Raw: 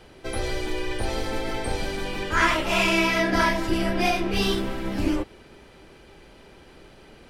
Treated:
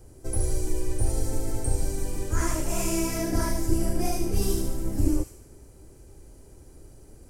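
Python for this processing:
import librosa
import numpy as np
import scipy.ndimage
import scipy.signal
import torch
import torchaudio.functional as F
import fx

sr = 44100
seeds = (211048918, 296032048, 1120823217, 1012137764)

p1 = fx.curve_eq(x, sr, hz=(110.0, 200.0, 280.0, 3400.0, 7300.0), db=(0, -13, -7, -28, 0))
p2 = p1 + fx.echo_wet_highpass(p1, sr, ms=74, feedback_pct=54, hz=2300.0, wet_db=-3, dry=0)
y = p2 * librosa.db_to_amplitude(6.0)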